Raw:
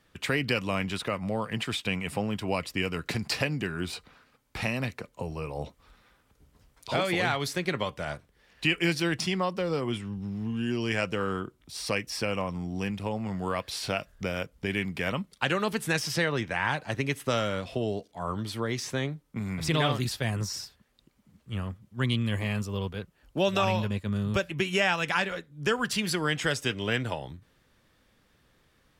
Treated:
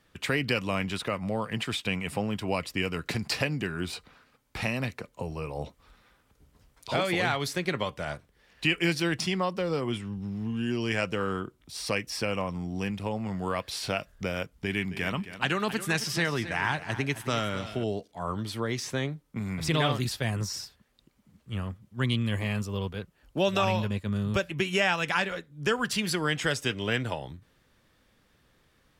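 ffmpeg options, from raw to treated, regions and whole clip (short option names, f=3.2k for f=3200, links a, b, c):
-filter_complex "[0:a]asettb=1/sr,asplit=3[a][b][c];[a]atrim=end=14.444[d];[b]atrim=start=14.44:end=17.84,asetpts=PTS-STARTPTS,afade=t=in:d=0.004:c=qsin,afade=t=out:st=3.396:d=0.004:c=qsin,equalizer=f=530:t=o:w=0.32:g=-7.5,aecho=1:1:268|536|804:0.224|0.0694|0.0215,atrim=end_sample=149940[e];[c]atrim=start=17.836[f];[d][e]acrossfade=d=0.004:c1=hsin:c2=qsin[g];[g][f]acrossfade=d=0.004:c1=qsin:c2=hsin"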